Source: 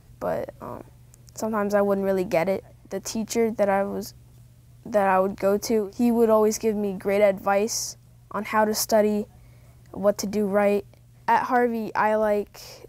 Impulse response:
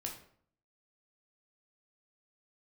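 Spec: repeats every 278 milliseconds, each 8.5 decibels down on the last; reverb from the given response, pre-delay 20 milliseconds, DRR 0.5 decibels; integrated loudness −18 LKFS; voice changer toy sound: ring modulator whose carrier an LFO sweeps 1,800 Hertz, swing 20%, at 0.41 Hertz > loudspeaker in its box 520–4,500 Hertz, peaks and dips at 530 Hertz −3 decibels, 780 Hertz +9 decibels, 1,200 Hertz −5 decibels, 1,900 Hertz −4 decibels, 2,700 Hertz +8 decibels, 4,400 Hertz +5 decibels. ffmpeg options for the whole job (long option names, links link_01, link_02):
-filter_complex "[0:a]aecho=1:1:278|556|834|1112:0.376|0.143|0.0543|0.0206,asplit=2[link_01][link_02];[1:a]atrim=start_sample=2205,adelay=20[link_03];[link_02][link_03]afir=irnorm=-1:irlink=0,volume=0.5dB[link_04];[link_01][link_04]amix=inputs=2:normalize=0,aeval=exprs='val(0)*sin(2*PI*1800*n/s+1800*0.2/0.41*sin(2*PI*0.41*n/s))':channel_layout=same,highpass=520,equalizer=frequency=530:width_type=q:width=4:gain=-3,equalizer=frequency=780:width_type=q:width=4:gain=9,equalizer=frequency=1200:width_type=q:width=4:gain=-5,equalizer=frequency=1900:width_type=q:width=4:gain=-4,equalizer=frequency=2700:width_type=q:width=4:gain=8,equalizer=frequency=4400:width_type=q:width=4:gain=5,lowpass=frequency=4500:width=0.5412,lowpass=frequency=4500:width=1.3066,volume=1dB"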